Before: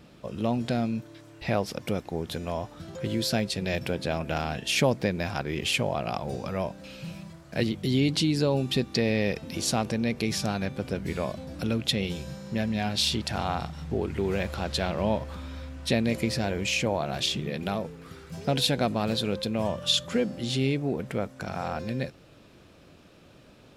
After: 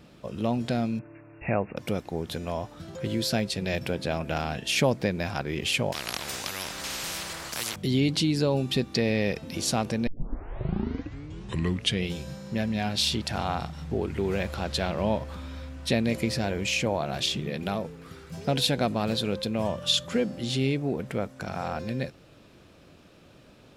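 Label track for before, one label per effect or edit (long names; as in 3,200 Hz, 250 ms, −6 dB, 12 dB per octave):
0.990000	1.770000	linear-phase brick-wall low-pass 2,800 Hz
5.920000	7.760000	every bin compressed towards the loudest bin 10 to 1
10.070000	10.070000	tape start 2.07 s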